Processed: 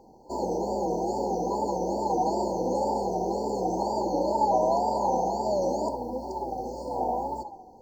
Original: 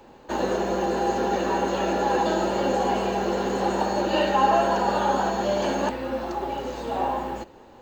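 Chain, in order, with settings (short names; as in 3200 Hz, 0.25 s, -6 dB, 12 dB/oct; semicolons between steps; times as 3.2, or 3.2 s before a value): narrowing echo 69 ms, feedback 64%, band-pass 990 Hz, level -4 dB; wow and flutter 140 cents; FFT band-reject 1000–4200 Hz; gain -4.5 dB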